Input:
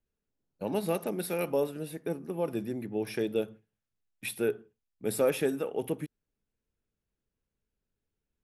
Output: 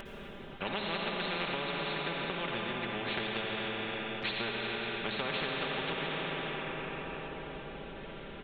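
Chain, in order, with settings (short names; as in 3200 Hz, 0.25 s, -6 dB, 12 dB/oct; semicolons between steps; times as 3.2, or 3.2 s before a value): downsampling 8000 Hz; upward compressor, threshold -48 dBFS; comb 5.1 ms; reverb RT60 3.6 s, pre-delay 54 ms, DRR 2 dB; compressor 3:1, threshold -30 dBFS, peak gain reduction 8 dB; spectral compressor 4:1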